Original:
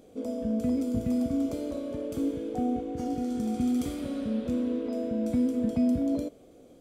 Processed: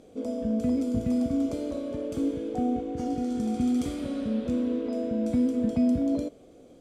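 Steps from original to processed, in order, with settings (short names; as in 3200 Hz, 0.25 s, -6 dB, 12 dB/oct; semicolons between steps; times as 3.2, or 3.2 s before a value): LPF 9700 Hz 12 dB/oct; gain +1.5 dB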